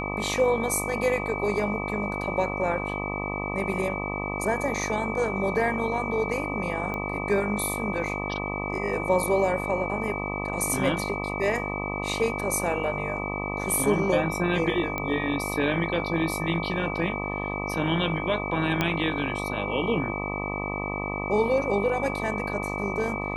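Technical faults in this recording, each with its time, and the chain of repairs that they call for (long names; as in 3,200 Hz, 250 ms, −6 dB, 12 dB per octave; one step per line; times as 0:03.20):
mains buzz 50 Hz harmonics 25 −32 dBFS
whistle 2,300 Hz −33 dBFS
0:06.94: click −19 dBFS
0:14.98: click −15 dBFS
0:18.81: click −9 dBFS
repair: click removal
notch filter 2,300 Hz, Q 30
hum removal 50 Hz, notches 25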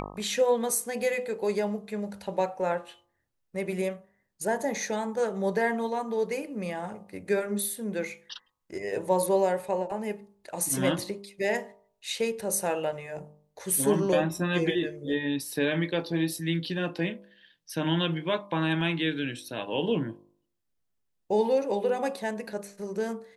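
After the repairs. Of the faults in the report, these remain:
0:18.81: click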